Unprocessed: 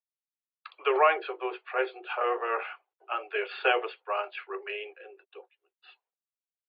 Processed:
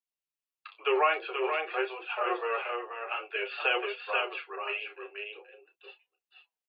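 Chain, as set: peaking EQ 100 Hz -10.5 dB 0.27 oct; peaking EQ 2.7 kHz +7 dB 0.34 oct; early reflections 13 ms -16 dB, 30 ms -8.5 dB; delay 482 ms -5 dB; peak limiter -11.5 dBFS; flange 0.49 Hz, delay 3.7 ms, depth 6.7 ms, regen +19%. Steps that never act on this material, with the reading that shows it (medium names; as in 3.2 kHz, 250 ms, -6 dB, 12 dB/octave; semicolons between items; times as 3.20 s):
peaking EQ 100 Hz: input has nothing below 300 Hz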